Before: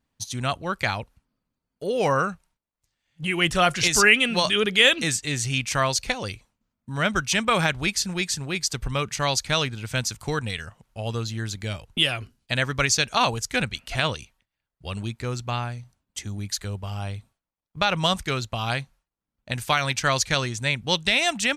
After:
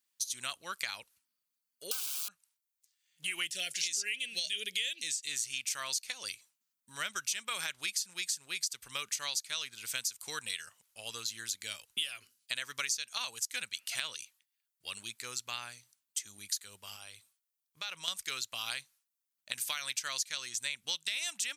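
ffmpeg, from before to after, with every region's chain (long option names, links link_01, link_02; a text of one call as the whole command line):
ffmpeg -i in.wav -filter_complex "[0:a]asettb=1/sr,asplit=3[link_01][link_02][link_03];[link_01]atrim=end=1.914[link_04];[link_02]atrim=start=1.91:end=2.31,asetpts=PTS-STARTPTS,afade=type=in:duration=0.004:curve=qsin,afade=type=out:start_time=0.396:duration=0.004:curve=qsin,highshelf=frequency=4500:width_type=q:width=1.5:gain=-12.5,aeval=exprs='(mod(13.3*val(0)+1,2)-1)/13.3':channel_layout=same,asuperstop=centerf=1900:order=4:qfactor=2.7[link_05];[link_03]atrim=start=2.306[link_06];[link_04][link_05]acrossfade=duration=0.004:curve1=hsin:curve2=qsin[link_07];[link_07][link_06]acrossfade=duration=0.004:curve1=qsin:curve2=hsin,asettb=1/sr,asplit=3[link_08][link_09][link_10];[link_08]atrim=end=3.464[link_11];[link_09]atrim=start=3.46:end=5.29,asetpts=PTS-STARTPTS,afade=type=in:duration=0.004:curve=qsin,afade=type=out:start_time=1.826:duration=0.004:curve=qsin,acrossover=split=8200[link_12][link_13];[link_13]acompressor=threshold=-45dB:ratio=4:attack=1:release=60[link_14];[link_12][link_14]amix=inputs=2:normalize=0,asuperstop=centerf=1100:order=4:qfactor=0.82[link_15];[link_10]atrim=start=5.286[link_16];[link_11][link_15]acrossfade=duration=0.004:curve1=hsin:curve2=qsin[link_17];[link_17][link_16]acrossfade=duration=0.004:curve1=qsin:curve2=hsin,asettb=1/sr,asplit=3[link_18][link_19][link_20];[link_18]atrim=end=16.964[link_21];[link_19]atrim=start=16.96:end=18.08,asetpts=PTS-STARTPTS,afade=type=in:duration=0.004:curve=qsin,afade=type=out:start_time=1.116:duration=0.004:curve=qsin,acompressor=threshold=-33dB:ratio=2.5:attack=3.2:release=140:knee=1:detection=peak,equalizer=frequency=210:width_type=o:width=0.24:gain=-5.5[link_22];[link_20]atrim=start=18.076[link_23];[link_21][link_22]acrossfade=duration=0.004:curve1=hsin:curve2=qsin[link_24];[link_24][link_23]acrossfade=duration=0.004:curve1=qsin:curve2=hsin,aderivative,acompressor=threshold=-37dB:ratio=6,equalizer=frequency=750:width_type=o:width=0.54:gain=-4.5,volume=5dB" out.wav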